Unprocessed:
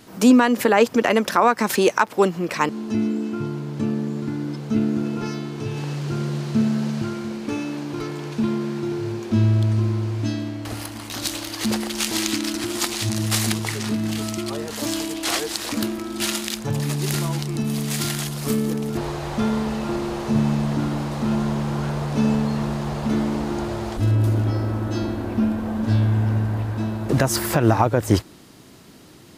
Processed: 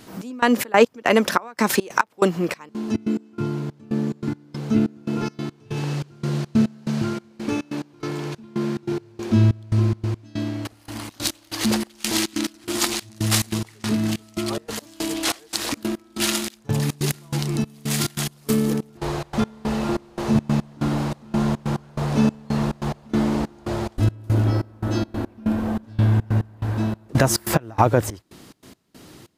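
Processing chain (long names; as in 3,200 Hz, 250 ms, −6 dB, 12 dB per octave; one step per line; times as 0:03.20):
gate pattern "xx..xx.x..x" 142 BPM −24 dB
level +2 dB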